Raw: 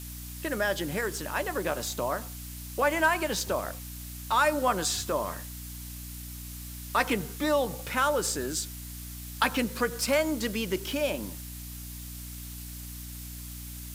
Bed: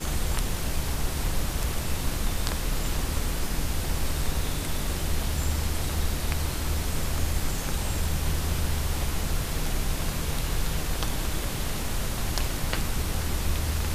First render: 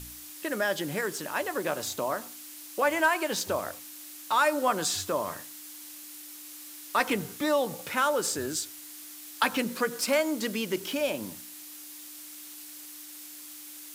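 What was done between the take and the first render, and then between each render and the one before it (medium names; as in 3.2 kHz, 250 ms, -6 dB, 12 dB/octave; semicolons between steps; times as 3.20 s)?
de-hum 60 Hz, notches 4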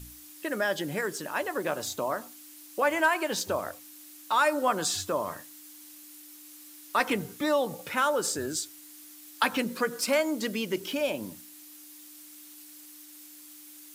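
noise reduction 6 dB, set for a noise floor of -45 dBFS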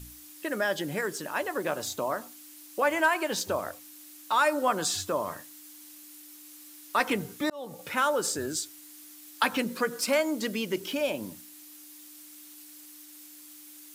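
7.50–7.91 s: fade in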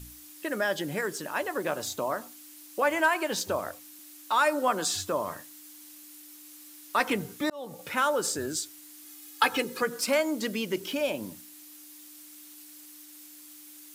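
3.99–4.95 s: high-pass 170 Hz 24 dB/octave; 9.05–9.82 s: comb 2.4 ms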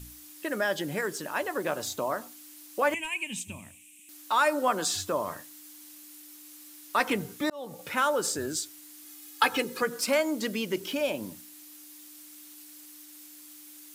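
2.94–4.09 s: FFT filter 230 Hz 0 dB, 460 Hz -25 dB, 670 Hz -23 dB, 970 Hz -15 dB, 1.4 kHz -29 dB, 2.5 kHz +9 dB, 4.6 kHz -19 dB, 8.2 kHz +3 dB, 14 kHz -13 dB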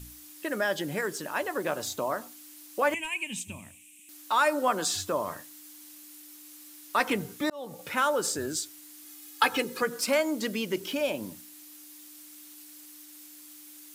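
no audible change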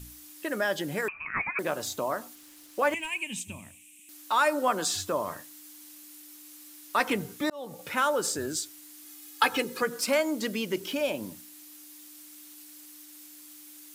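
1.08–1.59 s: frequency inversion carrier 2.8 kHz; 2.35–3.19 s: hysteresis with a dead band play -47.5 dBFS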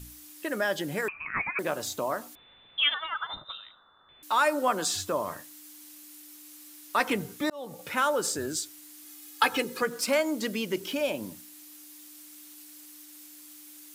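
2.35–4.23 s: frequency inversion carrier 3.8 kHz; 9.79–10.26 s: hysteresis with a dead band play -51 dBFS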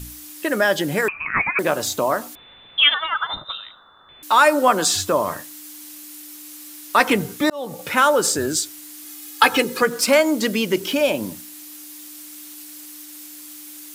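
trim +10 dB; peak limiter -1 dBFS, peak gain reduction 1 dB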